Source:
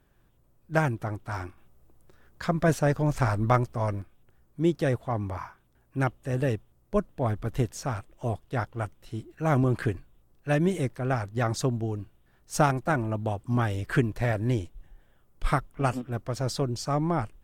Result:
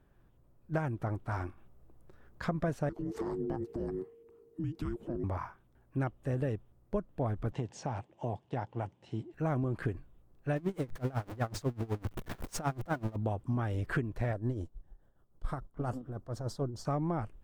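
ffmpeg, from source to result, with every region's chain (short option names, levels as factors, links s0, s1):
-filter_complex "[0:a]asettb=1/sr,asplit=3[s0][s1][s2];[s0]atrim=end=2.894[s3];[s1]atrim=start=2.89:end=5.24,asetpts=PTS-STARTPTS,afade=t=in:d=0.004:c=qsin,afade=t=out:st=2.346:d=0.004:c=qsin,acompressor=threshold=0.0224:ratio=4:attack=3.2:release=140:knee=1:detection=peak,afreqshift=-470[s4];[s2]atrim=start=5.236[s5];[s3][s4]acrossfade=d=0.004:c1=hsin:c2=qsin[s6];[s6][s5]acrossfade=d=0.004:c1=qsin:c2=hsin,asettb=1/sr,asplit=3[s7][s8][s9];[s7]atrim=end=7.524[s10];[s8]atrim=start=7.52:end=9.34,asetpts=PTS-STARTPTS,afade=t=in:d=0.004:c=qsin,afade=t=out:st=1.816:d=0.004:c=qsin,highpass=f=100:w=0.5412,highpass=f=100:w=1.3066,equalizer=f=850:t=q:w=4:g=8,equalizer=f=1300:t=q:w=4:g=-8,equalizer=f=2900:t=q:w=4:g=4,lowpass=f=7600:w=0.5412,lowpass=f=7600:w=1.3066,acompressor=threshold=0.0316:ratio=2.5:attack=3.2:release=140:knee=1:detection=peak[s11];[s9]atrim=start=9.336[s12];[s10][s11]acrossfade=d=0.004:c1=hsin:c2=qsin[s13];[s13][s12]acrossfade=d=0.004:c1=qsin:c2=hsin,asettb=1/sr,asplit=3[s14][s15][s16];[s14]atrim=end=10.564[s17];[s15]atrim=start=10.56:end=13.16,asetpts=PTS-STARTPTS,afade=t=in:d=0.004:c=qsin,afade=t=out:st=2.596:d=0.004:c=qsin,aeval=exprs='val(0)+0.5*0.0447*sgn(val(0))':c=same,bandreject=f=50:t=h:w=6,bandreject=f=100:t=h:w=6,bandreject=f=150:t=h:w=6,aeval=exprs='val(0)*pow(10,-25*(0.5-0.5*cos(2*PI*8*n/s))/20)':c=same[s18];[s16]atrim=start=13.156[s19];[s17][s18]acrossfade=d=0.004:c1=hsin:c2=qsin[s20];[s20][s19]acrossfade=d=0.004:c1=qsin:c2=hsin,asettb=1/sr,asplit=3[s21][s22][s23];[s21]atrim=end=14.334[s24];[s22]atrim=start=14.33:end=16.85,asetpts=PTS-STARTPTS,afade=t=in:d=0.004:c=qsin,afade=t=out:st=2.516:d=0.004:c=qsin,aeval=exprs='if(lt(val(0),0),0.708*val(0),val(0))':c=same,tremolo=f=6.9:d=0.7,equalizer=f=2400:t=o:w=0.68:g=-13.5[s25];[s23]atrim=start=16.846[s26];[s24][s25]acrossfade=d=0.004:c1=hsin:c2=qsin[s27];[s27][s26]acrossfade=d=0.004:c1=qsin:c2=hsin,highshelf=f=2200:g=-10.5,acompressor=threshold=0.0355:ratio=6"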